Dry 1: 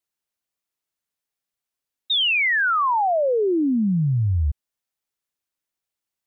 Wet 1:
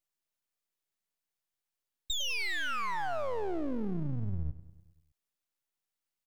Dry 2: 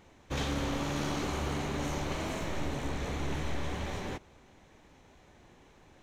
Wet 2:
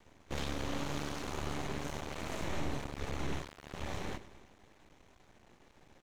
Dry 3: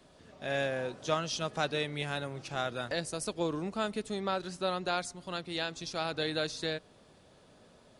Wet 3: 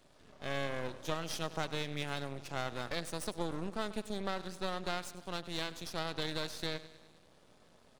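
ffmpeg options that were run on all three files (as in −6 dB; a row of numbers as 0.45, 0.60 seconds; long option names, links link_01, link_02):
-af "acompressor=threshold=-29dB:ratio=6,aecho=1:1:101|202|303|404|505|606:0.158|0.0935|0.0552|0.0326|0.0192|0.0113,aeval=exprs='max(val(0),0)':channel_layout=same"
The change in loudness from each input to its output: −14.5, −5.0, −4.5 LU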